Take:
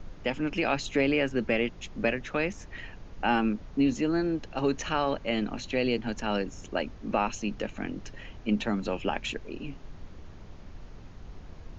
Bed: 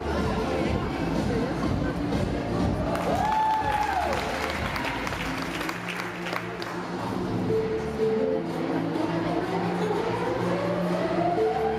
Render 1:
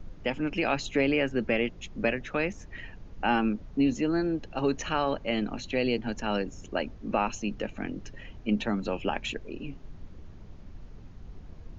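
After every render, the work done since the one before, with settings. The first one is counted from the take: denoiser 6 dB, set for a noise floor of -47 dBFS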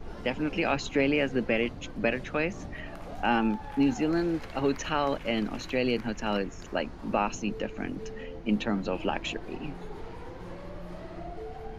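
add bed -17 dB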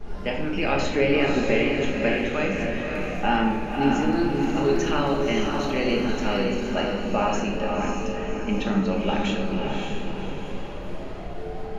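diffused feedback echo 0.56 s, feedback 45%, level -3.5 dB; shoebox room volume 380 m³, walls mixed, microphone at 1.3 m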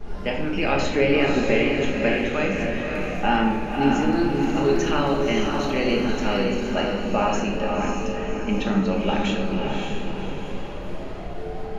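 gain +1.5 dB

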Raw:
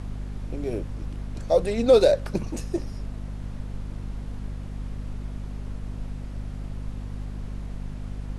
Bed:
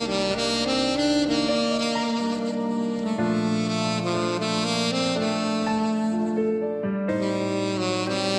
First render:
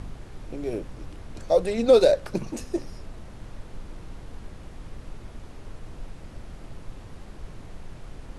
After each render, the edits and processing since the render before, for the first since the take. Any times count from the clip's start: de-hum 50 Hz, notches 5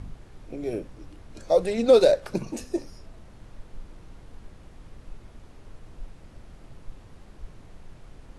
noise print and reduce 6 dB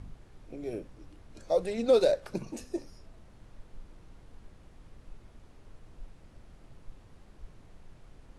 gain -6.5 dB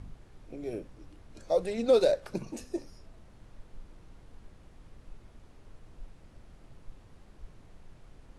nothing audible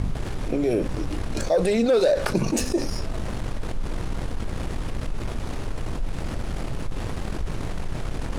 sample leveller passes 1; fast leveller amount 70%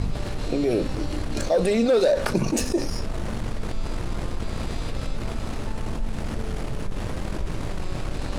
add bed -17 dB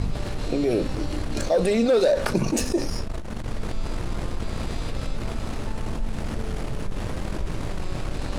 3.01–3.5 core saturation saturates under 56 Hz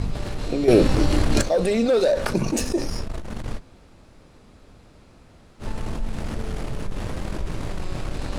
0.68–1.42 gain +8.5 dB; 3.58–5.62 room tone, crossfade 0.06 s

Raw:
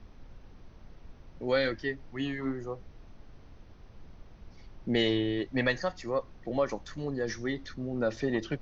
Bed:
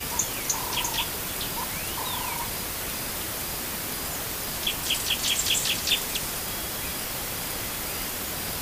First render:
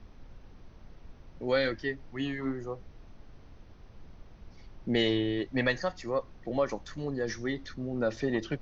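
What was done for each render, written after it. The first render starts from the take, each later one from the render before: nothing audible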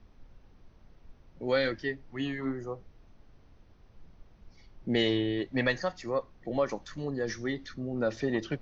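noise print and reduce 6 dB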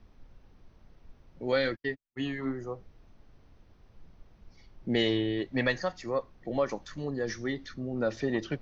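1.52–2.25 gate -38 dBFS, range -50 dB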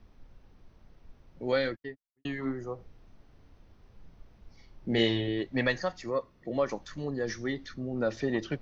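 1.48–2.25 studio fade out; 2.75–5.28 doubler 35 ms -7 dB; 6.1–6.59 notch comb 790 Hz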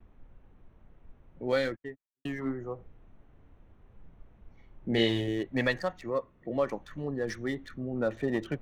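Wiener smoothing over 9 samples; gate with hold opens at -56 dBFS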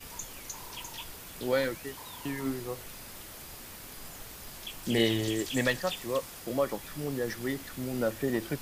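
add bed -14.5 dB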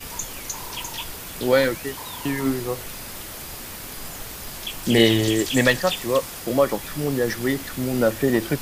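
gain +10 dB

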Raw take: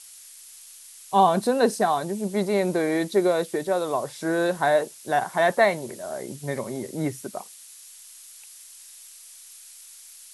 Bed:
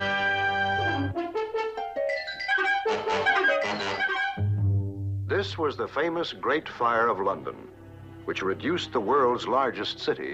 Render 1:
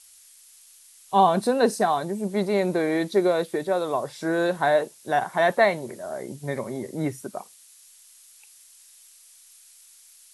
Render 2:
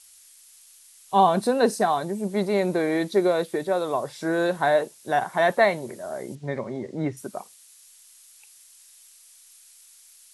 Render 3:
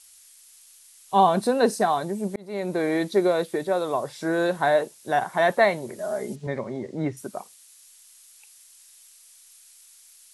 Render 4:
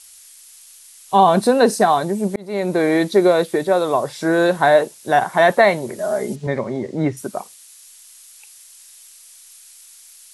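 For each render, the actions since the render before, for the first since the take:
noise print and reduce 6 dB
6.35–7.17 air absorption 120 m
2.36–2.86 fade in; 5.98–6.47 comb 4.8 ms, depth 97%
gain +7.5 dB; limiter -3 dBFS, peak gain reduction 3 dB

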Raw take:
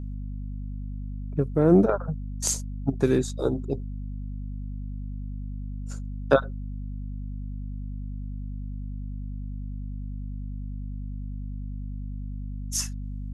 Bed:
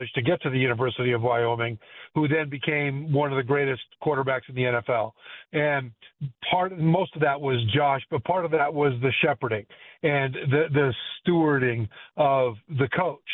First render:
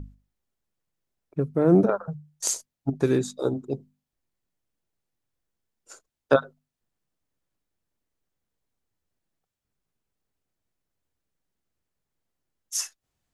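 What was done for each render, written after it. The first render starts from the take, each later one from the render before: notches 50/100/150/200/250 Hz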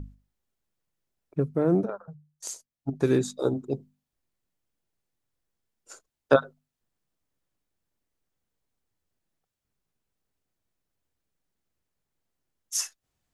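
1.45–3.13 dip -10.5 dB, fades 0.44 s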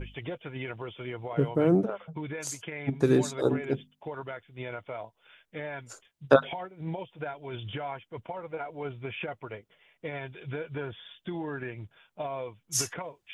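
add bed -14 dB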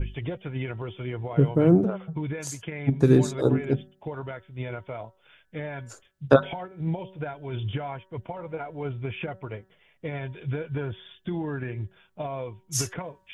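low shelf 230 Hz +12 dB; de-hum 189.2 Hz, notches 10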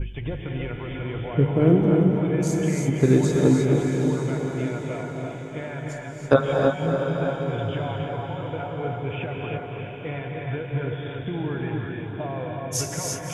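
diffused feedback echo 0.632 s, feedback 48%, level -6 dB; non-linear reverb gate 0.36 s rising, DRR 0.5 dB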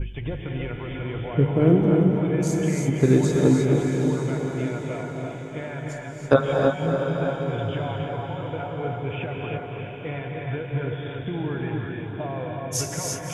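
nothing audible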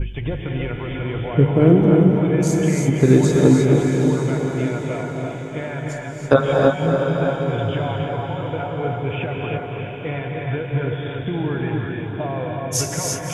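gain +5 dB; limiter -2 dBFS, peak gain reduction 3 dB

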